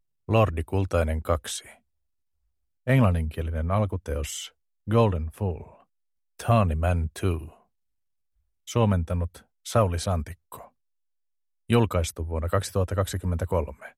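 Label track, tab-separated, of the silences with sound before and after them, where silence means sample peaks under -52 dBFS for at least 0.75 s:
1.780000	2.870000	silence
7.610000	8.670000	silence
10.680000	11.690000	silence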